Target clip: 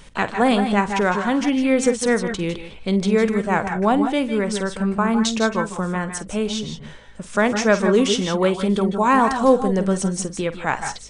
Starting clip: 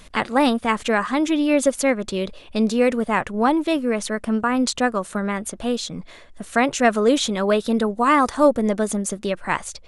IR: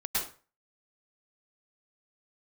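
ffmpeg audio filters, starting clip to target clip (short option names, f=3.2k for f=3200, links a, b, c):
-filter_complex "[0:a]aeval=exprs='val(0)+0.00224*(sin(2*PI*60*n/s)+sin(2*PI*2*60*n/s)/2+sin(2*PI*3*60*n/s)/3+sin(2*PI*4*60*n/s)/4+sin(2*PI*5*60*n/s)/5)':c=same,asetrate=39249,aresample=44100,asplit=2[a][b];[1:a]atrim=start_sample=2205,afade=t=out:st=0.18:d=0.01,atrim=end_sample=8379,adelay=49[c];[b][c]afir=irnorm=-1:irlink=0,volume=-12.5dB[d];[a][d]amix=inputs=2:normalize=0"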